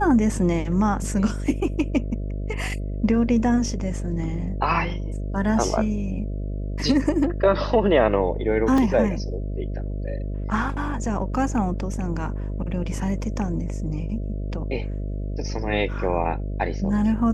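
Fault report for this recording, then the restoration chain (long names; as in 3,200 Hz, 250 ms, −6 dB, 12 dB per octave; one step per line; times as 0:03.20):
mains buzz 50 Hz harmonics 13 −28 dBFS
0:08.78: drop-out 2.4 ms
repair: hum removal 50 Hz, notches 13
repair the gap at 0:08.78, 2.4 ms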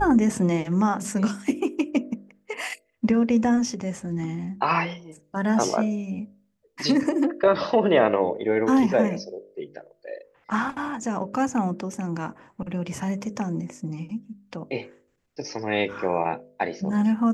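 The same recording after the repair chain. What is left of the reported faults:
none of them is left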